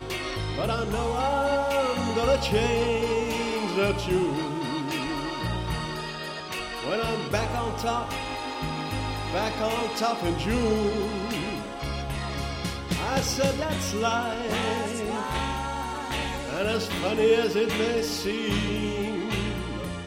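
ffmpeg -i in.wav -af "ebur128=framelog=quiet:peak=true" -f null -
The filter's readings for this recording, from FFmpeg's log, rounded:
Integrated loudness:
  I:         -27.3 LUFS
  Threshold: -37.3 LUFS
Loudness range:
  LRA:         4.2 LU
  Threshold: -47.3 LUFS
  LRA low:   -29.4 LUFS
  LRA high:  -25.3 LUFS
True peak:
  Peak:      -11.1 dBFS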